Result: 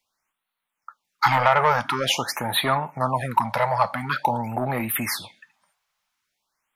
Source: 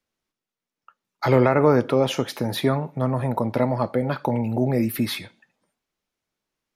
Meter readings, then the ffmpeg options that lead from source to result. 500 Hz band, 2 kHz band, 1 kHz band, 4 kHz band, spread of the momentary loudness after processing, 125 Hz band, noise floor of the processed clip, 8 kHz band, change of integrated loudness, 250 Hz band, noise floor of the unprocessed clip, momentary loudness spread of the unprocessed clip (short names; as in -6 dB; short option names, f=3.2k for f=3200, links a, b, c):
-5.5 dB, +7.0 dB, +7.0 dB, +6.0 dB, 8 LU, -6.0 dB, -83 dBFS, +7.0 dB, -0.5 dB, -9.0 dB, under -85 dBFS, 8 LU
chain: -af "asoftclip=type=tanh:threshold=-12.5dB,lowshelf=f=620:t=q:w=1.5:g=-12,afftfilt=real='re*(1-between(b*sr/1024,270*pow(6500/270,0.5+0.5*sin(2*PI*0.47*pts/sr))/1.41,270*pow(6500/270,0.5+0.5*sin(2*PI*0.47*pts/sr))*1.41))':imag='im*(1-between(b*sr/1024,270*pow(6500/270,0.5+0.5*sin(2*PI*0.47*pts/sr))/1.41,270*pow(6500/270,0.5+0.5*sin(2*PI*0.47*pts/sr))*1.41))':win_size=1024:overlap=0.75,volume=7.5dB"